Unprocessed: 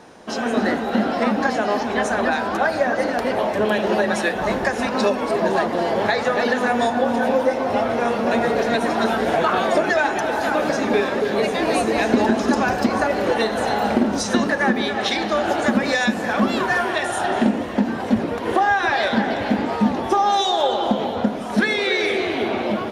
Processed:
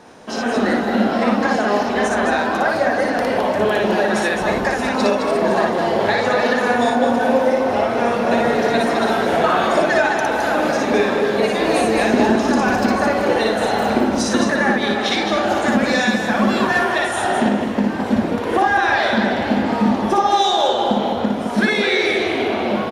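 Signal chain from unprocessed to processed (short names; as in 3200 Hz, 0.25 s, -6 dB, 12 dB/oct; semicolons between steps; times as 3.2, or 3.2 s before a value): loudspeakers at several distances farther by 20 m -2 dB, 73 m -6 dB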